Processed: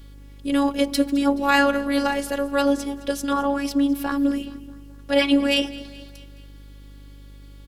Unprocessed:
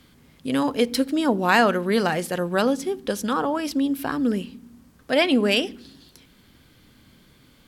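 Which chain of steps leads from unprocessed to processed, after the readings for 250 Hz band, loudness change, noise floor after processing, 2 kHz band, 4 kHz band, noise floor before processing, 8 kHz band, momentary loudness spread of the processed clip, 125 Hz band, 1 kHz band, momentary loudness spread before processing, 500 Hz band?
+2.0 dB, +0.5 dB, -43 dBFS, 0.0 dB, +0.5 dB, -56 dBFS, +0.5 dB, 12 LU, -7.5 dB, 0.0 dB, 9 LU, -1.0 dB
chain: feedback echo 0.213 s, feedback 53%, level -19.5 dB; robotiser 281 Hz; buzz 50 Hz, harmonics 11, -46 dBFS -9 dB/oct; gain +2.5 dB

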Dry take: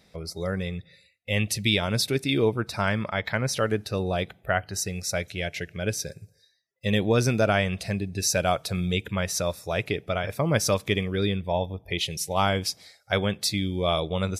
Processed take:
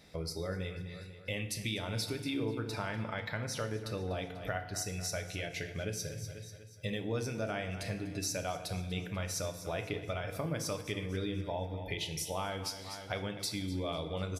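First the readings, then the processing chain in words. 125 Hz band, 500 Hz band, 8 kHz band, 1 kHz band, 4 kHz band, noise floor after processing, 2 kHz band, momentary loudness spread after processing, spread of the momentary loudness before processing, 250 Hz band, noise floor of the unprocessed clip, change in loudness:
-10.0 dB, -11.5 dB, -9.5 dB, -12.0 dB, -11.0 dB, -48 dBFS, -11.5 dB, 4 LU, 8 LU, -10.5 dB, -63 dBFS, -11.0 dB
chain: feedback echo 0.245 s, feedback 47%, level -17 dB; compressor 4:1, threshold -37 dBFS, peak gain reduction 16.5 dB; FDN reverb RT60 0.82 s, low-frequency decay 1.4×, high-frequency decay 0.8×, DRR 5.5 dB

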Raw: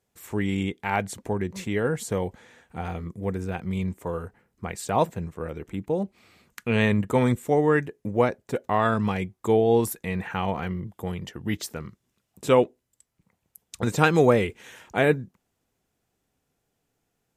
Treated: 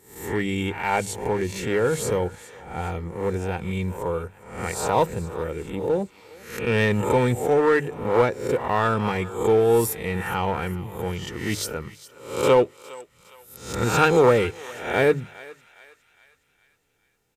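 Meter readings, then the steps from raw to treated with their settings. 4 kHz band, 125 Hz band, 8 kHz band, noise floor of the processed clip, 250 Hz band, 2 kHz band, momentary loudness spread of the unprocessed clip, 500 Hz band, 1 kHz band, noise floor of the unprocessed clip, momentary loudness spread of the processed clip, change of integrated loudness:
+4.0 dB, +0.5 dB, +5.5 dB, -65 dBFS, -1.0 dB, +3.0 dB, 14 LU, +3.5 dB, +3.0 dB, -78 dBFS, 15 LU, +2.5 dB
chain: spectral swells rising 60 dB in 0.55 s; notches 50/100/150 Hz; comb 2.2 ms, depth 35%; in parallel at -3.5 dB: overloaded stage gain 21.5 dB; on the sum: thinning echo 0.41 s, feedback 52%, high-pass 1000 Hz, level -16.5 dB; gain -2.5 dB

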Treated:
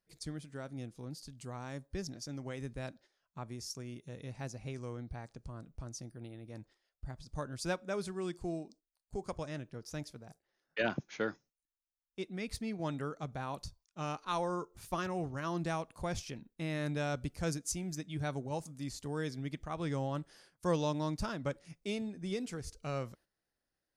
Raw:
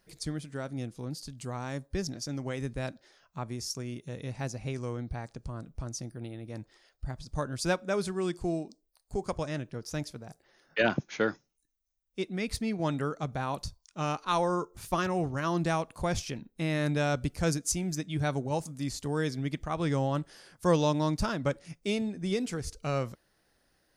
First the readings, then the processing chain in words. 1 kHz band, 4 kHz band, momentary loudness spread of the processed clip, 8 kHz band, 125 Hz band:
-7.0 dB, -7.0 dB, 12 LU, -7.0 dB, -7.0 dB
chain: gate -53 dBFS, range -11 dB; gain -7 dB

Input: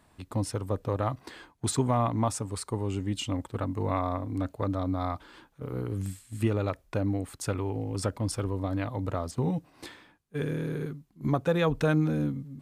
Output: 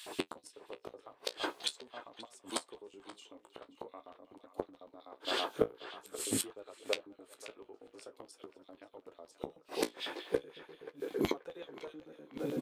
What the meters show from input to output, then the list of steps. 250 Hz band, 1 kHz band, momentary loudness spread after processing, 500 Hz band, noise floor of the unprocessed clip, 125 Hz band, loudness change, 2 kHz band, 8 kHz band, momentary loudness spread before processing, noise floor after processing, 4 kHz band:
-13.0 dB, -11.5 dB, 19 LU, -7.5 dB, -65 dBFS, -25.5 dB, -9.0 dB, -5.0 dB, -4.0 dB, 10 LU, -68 dBFS, +1.5 dB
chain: HPF 82 Hz 24 dB/oct; bell 1900 Hz -2 dB 0.54 oct; in parallel at +3 dB: compressor 10:1, threshold -36 dBFS, peak gain reduction 16.5 dB; on the sum: LFO high-pass square 8 Hz 410–3200 Hz; speakerphone echo 0.33 s, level -19 dB; flipped gate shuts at -26 dBFS, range -35 dB; on a send: narrowing echo 0.531 s, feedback 42%, band-pass 1400 Hz, level -11.5 dB; on the sum: flange 0.45 Hz, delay 9.3 ms, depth 9.6 ms, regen -43%; gain +14 dB

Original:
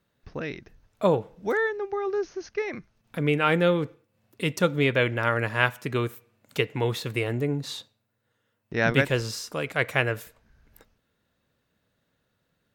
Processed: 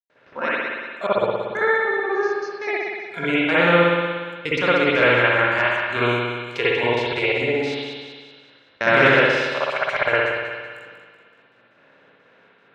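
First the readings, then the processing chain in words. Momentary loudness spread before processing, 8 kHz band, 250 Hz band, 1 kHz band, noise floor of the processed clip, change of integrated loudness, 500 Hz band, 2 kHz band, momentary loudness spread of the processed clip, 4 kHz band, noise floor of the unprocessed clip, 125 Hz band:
13 LU, n/a, +3.5 dB, +8.5 dB, -56 dBFS, +6.5 dB, +6.5 dB, +9.5 dB, 13 LU, +7.0 dB, -75 dBFS, -1.5 dB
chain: per-bin compression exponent 0.4; spectral noise reduction 21 dB; HPF 510 Hz 6 dB/oct; high shelf 10000 Hz +6.5 dB; one-sided clip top -7.5 dBFS, bottom -5.5 dBFS; wow and flutter 25 cents; step gate ".xxxx.xxx.x.x.x" 155 bpm -60 dB; air absorption 150 m; thin delay 0.189 s, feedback 48%, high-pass 1500 Hz, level -9 dB; spring tank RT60 1.5 s, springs 58 ms, chirp 40 ms, DRR -9 dB; gain -2 dB

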